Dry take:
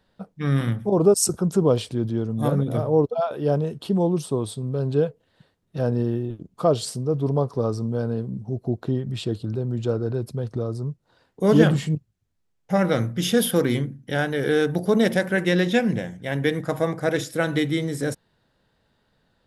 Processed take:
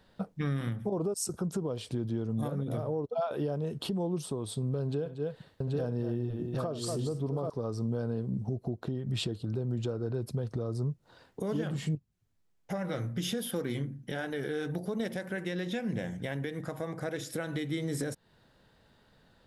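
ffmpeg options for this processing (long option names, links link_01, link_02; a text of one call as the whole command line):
ffmpeg -i in.wav -filter_complex "[0:a]asettb=1/sr,asplit=3[link_01][link_02][link_03];[link_01]atrim=end=4.824[link_04];[link_02]atrim=start=4.82:end=7.5,asetpts=PTS-STARTPTS,afade=type=in:duration=0.004:curve=qsin,afade=type=out:start_time=2.676:duration=0.004:curve=qsin,aecho=1:1:65|236|783|853:0.15|0.266|0.473|0.211,atrim=end_sample=118188[link_05];[link_03]atrim=start=7.496[link_06];[link_04][link_05]acrossfade=duration=0.004:curve1=hsin:curve2=qsin[link_07];[link_07][link_06]acrossfade=duration=0.004:curve1=qsin:curve2=hsin,asettb=1/sr,asplit=3[link_08][link_09][link_10];[link_08]atrim=end=11.964[link_11];[link_09]atrim=start=11.96:end=15,asetpts=PTS-STARTPTS,afade=type=in:duration=0.004:curve=qsin,afade=type=out:start_time=3.036:duration=0.004:curve=qsin,flanger=delay=2.8:depth=5.1:regen=-54:speed=1.3:shape=triangular[link_12];[link_10]atrim=start=14.996[link_13];[link_11][link_12]acrossfade=duration=0.004:curve1=hsin:curve2=qsin[link_14];[link_14][link_13]acrossfade=duration=0.004:curve1=qsin:curve2=hsin,acompressor=threshold=-31dB:ratio=4,alimiter=level_in=2.5dB:limit=-24dB:level=0:latency=1:release=339,volume=-2.5dB,volume=3.5dB" out.wav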